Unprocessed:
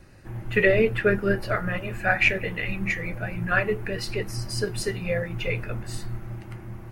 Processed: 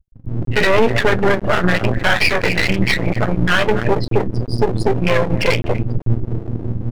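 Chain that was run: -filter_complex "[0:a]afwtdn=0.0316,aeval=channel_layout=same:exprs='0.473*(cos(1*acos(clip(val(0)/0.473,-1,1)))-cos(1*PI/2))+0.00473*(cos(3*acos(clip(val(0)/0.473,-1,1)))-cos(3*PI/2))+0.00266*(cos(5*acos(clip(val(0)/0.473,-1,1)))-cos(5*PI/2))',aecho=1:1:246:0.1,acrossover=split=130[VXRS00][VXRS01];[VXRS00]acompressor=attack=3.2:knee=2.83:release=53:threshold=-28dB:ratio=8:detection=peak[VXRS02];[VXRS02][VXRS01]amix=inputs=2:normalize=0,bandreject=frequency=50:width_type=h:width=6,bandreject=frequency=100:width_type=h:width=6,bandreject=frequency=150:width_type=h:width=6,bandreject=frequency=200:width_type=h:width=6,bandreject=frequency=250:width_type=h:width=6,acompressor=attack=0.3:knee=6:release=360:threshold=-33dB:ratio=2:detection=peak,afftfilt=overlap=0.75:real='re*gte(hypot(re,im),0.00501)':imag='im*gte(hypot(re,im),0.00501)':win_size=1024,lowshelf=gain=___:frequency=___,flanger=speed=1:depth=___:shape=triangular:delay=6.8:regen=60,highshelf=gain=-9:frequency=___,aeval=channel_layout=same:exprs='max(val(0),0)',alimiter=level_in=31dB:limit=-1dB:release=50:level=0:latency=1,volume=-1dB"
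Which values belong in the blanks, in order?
-7.5, 83, 7.1, 11k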